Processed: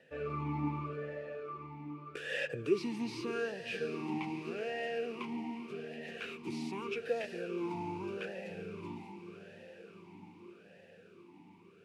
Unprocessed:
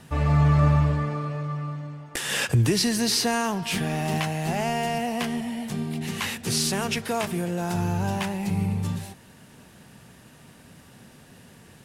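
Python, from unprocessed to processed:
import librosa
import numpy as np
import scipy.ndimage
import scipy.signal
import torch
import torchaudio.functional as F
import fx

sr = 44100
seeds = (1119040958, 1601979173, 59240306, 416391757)

y = fx.echo_diffused(x, sr, ms=657, feedback_pct=63, wet_db=-10)
y = fx.vowel_sweep(y, sr, vowels='e-u', hz=0.83)
y = y * librosa.db_to_amplitude(1.0)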